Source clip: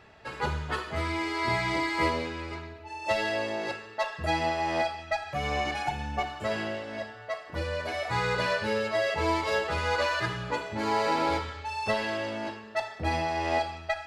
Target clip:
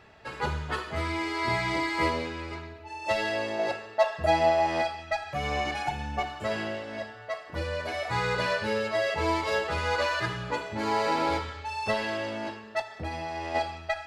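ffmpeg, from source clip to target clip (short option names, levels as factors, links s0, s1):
-filter_complex "[0:a]asettb=1/sr,asplit=3[s0][s1][s2];[s0]atrim=end=3.594[s3];[s1]atrim=start=3.59:end=4.67,asetpts=PTS-STARTPTS,afade=t=in:d=0.004:c=qsin,afade=t=out:st=1.076:d=0.004:c=qsin,equalizer=f=670:w=2.6:g=9.5[s4];[s2]atrim=start=4.666[s5];[s3][s4]acrossfade=d=0.004:c1=hsin:c2=qsin[s6];[s6][s5]acrossfade=d=0.004:c1=qsin:c2=hsin,asplit=3[s7][s8][s9];[s7]afade=t=out:st=12.81:d=0.02[s10];[s8]acompressor=threshold=0.0251:ratio=4,afade=t=in:st=12.81:d=0.02,afade=t=out:st=13.54:d=0.02[s11];[s9]afade=t=in:st=13.54:d=0.02[s12];[s10][s11][s12]amix=inputs=3:normalize=0"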